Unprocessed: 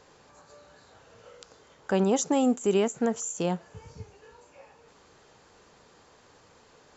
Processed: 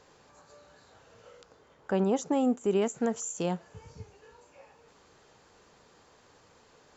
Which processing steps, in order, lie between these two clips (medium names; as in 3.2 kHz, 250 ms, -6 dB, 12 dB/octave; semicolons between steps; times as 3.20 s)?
1.41–2.82 s: treble shelf 3.1 kHz -10 dB; trim -2.5 dB